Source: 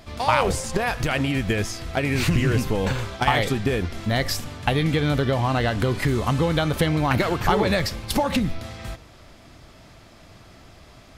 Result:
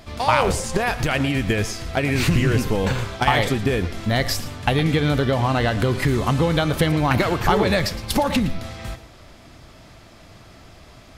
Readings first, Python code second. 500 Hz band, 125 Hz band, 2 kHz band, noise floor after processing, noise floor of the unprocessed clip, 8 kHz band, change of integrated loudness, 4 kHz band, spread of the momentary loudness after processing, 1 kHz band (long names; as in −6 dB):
+2.0 dB, +2.0 dB, +2.0 dB, −46 dBFS, −48 dBFS, +2.0 dB, +2.0 dB, +2.0 dB, 6 LU, +2.0 dB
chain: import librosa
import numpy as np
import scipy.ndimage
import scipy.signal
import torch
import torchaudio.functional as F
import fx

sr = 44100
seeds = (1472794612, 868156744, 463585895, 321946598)

p1 = x + 10.0 ** (-15.5 / 20.0) * np.pad(x, (int(113 * sr / 1000.0), 0))[:len(x)]
p2 = np.clip(10.0 ** (12.5 / 20.0) * p1, -1.0, 1.0) / 10.0 ** (12.5 / 20.0)
y = p1 + F.gain(torch.from_numpy(p2), -11.5).numpy()